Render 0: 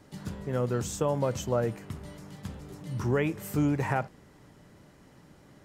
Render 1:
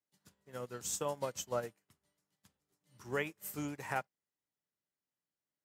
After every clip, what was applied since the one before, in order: tilt EQ +3 dB/octave; upward expansion 2.5:1, over -51 dBFS; trim -4 dB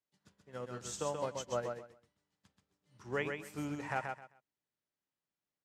distance through air 73 m; on a send: feedback delay 131 ms, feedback 21%, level -5 dB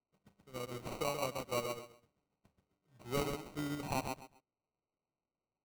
sample-and-hold 26×

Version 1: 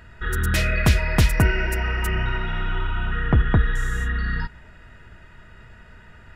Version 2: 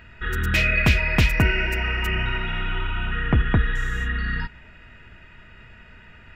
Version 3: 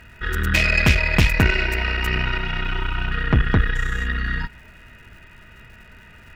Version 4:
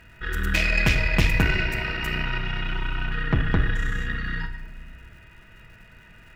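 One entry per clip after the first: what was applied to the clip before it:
fifteen-band graphic EQ 250 Hz +3 dB, 2.5 kHz +10 dB, 10 kHz -10 dB; trim -2 dB
Chebyshev shaper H 6 -18 dB, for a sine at -4 dBFS; crackle 290 per s -47 dBFS; trim +1.5 dB
reverberation RT60 1.2 s, pre-delay 6 ms, DRR 6.5 dB; trim -5 dB

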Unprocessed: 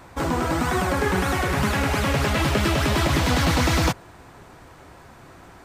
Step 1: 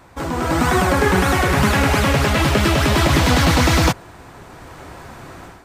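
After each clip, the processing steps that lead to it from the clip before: level rider gain up to 11 dB; trim -1.5 dB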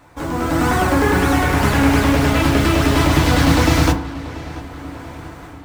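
modulation noise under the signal 23 dB; filtered feedback delay 687 ms, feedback 57%, low-pass 4.5 kHz, level -17 dB; FDN reverb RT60 0.51 s, low-frequency decay 1.35×, high-frequency decay 0.4×, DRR 2.5 dB; trim -3 dB

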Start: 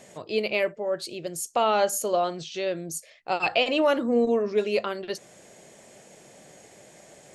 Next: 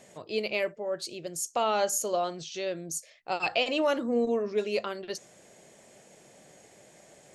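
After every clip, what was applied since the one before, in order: dynamic bell 6.2 kHz, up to +7 dB, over -49 dBFS, Q 1.5; trim -4.5 dB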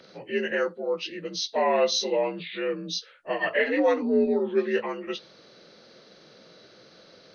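frequency axis rescaled in octaves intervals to 84%; trim +5 dB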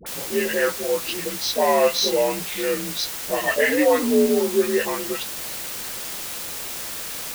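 word length cut 6-bit, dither triangular; phase dispersion highs, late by 64 ms, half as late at 840 Hz; trim +4.5 dB

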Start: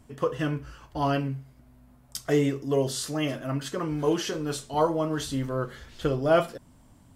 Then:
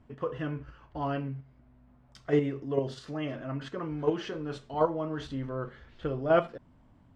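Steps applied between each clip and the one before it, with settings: low-pass 2.6 kHz 12 dB/octave; in parallel at +1.5 dB: level held to a coarse grid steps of 21 dB; on the sum: trim -7.5 dB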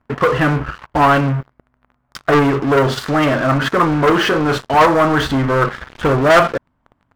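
waveshaping leveller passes 5; peaking EQ 1.3 kHz +9 dB 1.6 oct; trim +2.5 dB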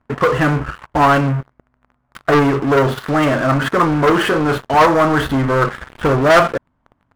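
median filter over 9 samples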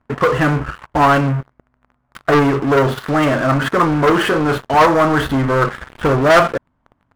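no audible change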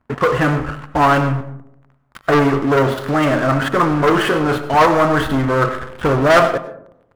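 algorithmic reverb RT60 0.74 s, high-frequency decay 0.35×, pre-delay 55 ms, DRR 11 dB; trim -1 dB

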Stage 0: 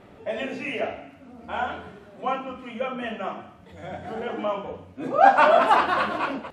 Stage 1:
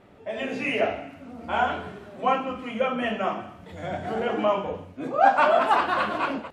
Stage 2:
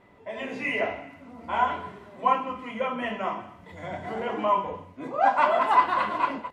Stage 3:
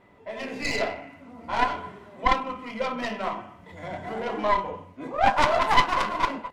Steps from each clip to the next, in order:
level rider gain up to 9 dB; trim -4.5 dB
small resonant body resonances 1/2 kHz, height 15 dB, ringing for 55 ms; trim -4.5 dB
tracing distortion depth 0.3 ms

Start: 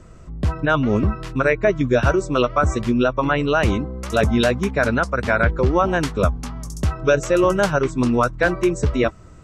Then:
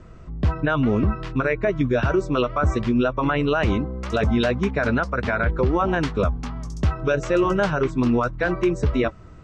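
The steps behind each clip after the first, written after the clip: low-pass 4.3 kHz 12 dB/octave; band-stop 550 Hz, Q 18; peak limiter -11.5 dBFS, peak gain reduction 7 dB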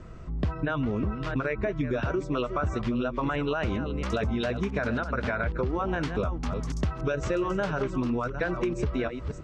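chunks repeated in reverse 336 ms, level -12 dB; compression, threshold -25 dBFS, peak gain reduction 10 dB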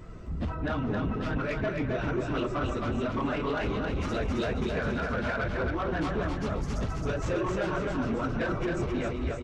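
phase randomisation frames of 50 ms; saturation -25.5 dBFS, distortion -13 dB; feedback delay 267 ms, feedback 31%, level -3.5 dB

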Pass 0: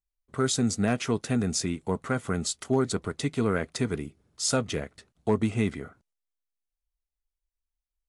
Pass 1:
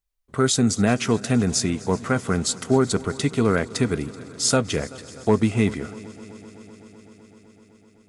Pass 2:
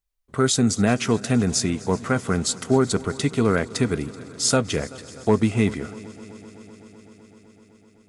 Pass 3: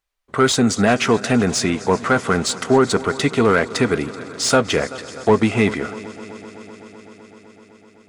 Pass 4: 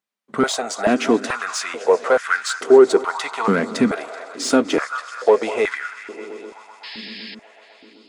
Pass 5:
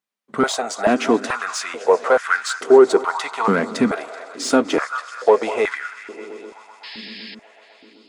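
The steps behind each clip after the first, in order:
multi-head delay 127 ms, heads second and third, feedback 73%, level -21.5 dB; trim +6 dB
no audible change
overdrive pedal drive 15 dB, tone 2.3 kHz, clips at -6 dBFS; trim +3 dB
painted sound noise, 6.83–7.35 s, 1.6–5.3 kHz -31 dBFS; repeats whose band climbs or falls 196 ms, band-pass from 790 Hz, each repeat 0.7 oct, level -9.5 dB; step-sequenced high-pass 2.3 Hz 210–1600 Hz; trim -5 dB
dynamic bell 920 Hz, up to +4 dB, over -28 dBFS, Q 1.1; trim -1 dB

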